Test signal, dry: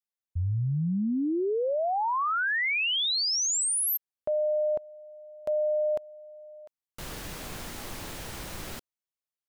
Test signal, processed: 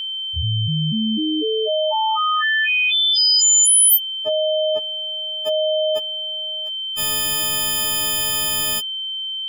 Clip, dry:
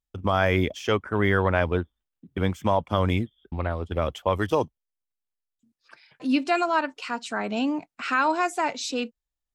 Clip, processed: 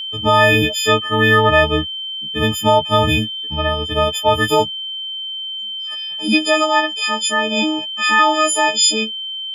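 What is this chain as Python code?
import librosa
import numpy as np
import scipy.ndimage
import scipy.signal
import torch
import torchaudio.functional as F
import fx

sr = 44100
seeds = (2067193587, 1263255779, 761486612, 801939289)

y = fx.freq_snap(x, sr, grid_st=6)
y = y + 10.0 ** (-30.0 / 20.0) * np.sin(2.0 * np.pi * 3100.0 * np.arange(len(y)) / sr)
y = y * 10.0 ** (6.0 / 20.0)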